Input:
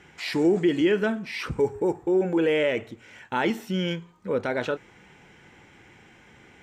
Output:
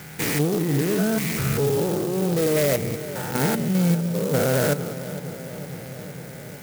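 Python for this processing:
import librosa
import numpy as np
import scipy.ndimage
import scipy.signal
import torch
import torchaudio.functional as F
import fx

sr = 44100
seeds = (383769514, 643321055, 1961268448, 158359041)

p1 = fx.spec_steps(x, sr, hold_ms=200)
p2 = fx.low_shelf(p1, sr, hz=180.0, db=8.0)
p3 = fx.over_compress(p2, sr, threshold_db=-29.0, ratio=-1.0)
p4 = p2 + F.gain(torch.from_numpy(p3), 2.5).numpy()
p5 = 10.0 ** (-16.0 / 20.0) * np.tanh(p4 / 10.0 ** (-16.0 / 20.0))
p6 = fx.cabinet(p5, sr, low_hz=130.0, low_slope=12, high_hz=3000.0, hz=(140.0, 240.0, 350.0, 990.0), db=(8, -5, -9, -9))
p7 = p6 + fx.echo_bbd(p6, sr, ms=458, stages=4096, feedback_pct=71, wet_db=-13.5, dry=0)
p8 = fx.clock_jitter(p7, sr, seeds[0], jitter_ms=0.083)
y = F.gain(torch.from_numpy(p8), 3.5).numpy()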